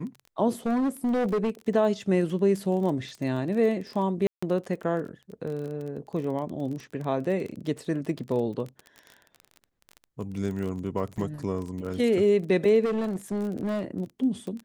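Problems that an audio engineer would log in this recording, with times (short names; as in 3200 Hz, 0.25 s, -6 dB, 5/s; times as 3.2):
crackle 26/s -33 dBFS
0.66–1.5 clipped -22 dBFS
4.27–4.42 gap 0.155 s
11.17–11.18 gap 6.7 ms
12.84–13.83 clipped -24 dBFS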